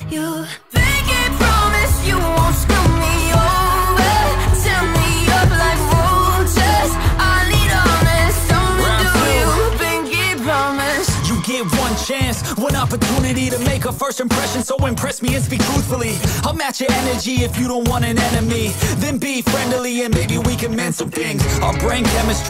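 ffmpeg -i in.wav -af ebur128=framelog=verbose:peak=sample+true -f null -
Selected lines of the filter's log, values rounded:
Integrated loudness:
  I:         -16.2 LUFS
  Threshold: -26.1 LUFS
Loudness range:
  LRA:         3.8 LU
  Threshold: -36.1 LUFS
  LRA low:   -18.1 LUFS
  LRA high:  -14.3 LUFS
Sample peak:
  Peak:       -4.2 dBFS
True peak:
  Peak:       -3.9 dBFS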